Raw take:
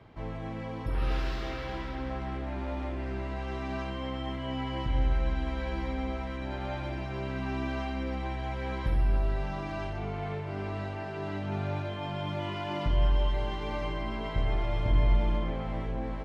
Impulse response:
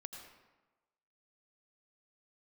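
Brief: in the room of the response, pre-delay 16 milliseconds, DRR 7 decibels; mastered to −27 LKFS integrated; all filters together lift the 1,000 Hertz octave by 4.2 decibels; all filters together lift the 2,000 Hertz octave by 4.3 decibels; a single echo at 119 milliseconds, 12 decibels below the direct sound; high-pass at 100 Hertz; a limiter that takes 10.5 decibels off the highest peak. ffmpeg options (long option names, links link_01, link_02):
-filter_complex "[0:a]highpass=100,equalizer=frequency=1000:width_type=o:gain=4.5,equalizer=frequency=2000:width_type=o:gain=4,alimiter=level_in=5dB:limit=-24dB:level=0:latency=1,volume=-5dB,aecho=1:1:119:0.251,asplit=2[link_01][link_02];[1:a]atrim=start_sample=2205,adelay=16[link_03];[link_02][link_03]afir=irnorm=-1:irlink=0,volume=-3dB[link_04];[link_01][link_04]amix=inputs=2:normalize=0,volume=10dB"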